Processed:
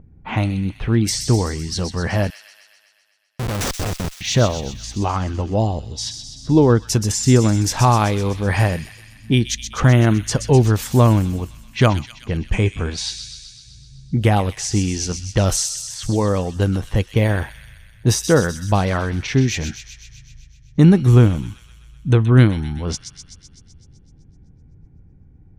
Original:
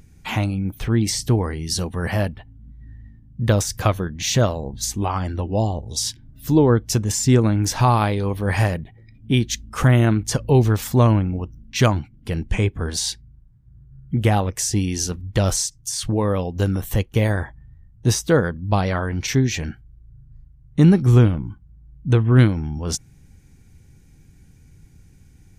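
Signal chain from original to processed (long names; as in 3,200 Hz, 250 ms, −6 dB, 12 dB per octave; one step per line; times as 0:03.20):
low-pass that shuts in the quiet parts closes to 740 Hz, open at −16.5 dBFS
0:02.30–0:04.21: comparator with hysteresis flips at −24 dBFS
delay with a high-pass on its return 127 ms, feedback 66%, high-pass 3,000 Hz, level −6.5 dB
level +2 dB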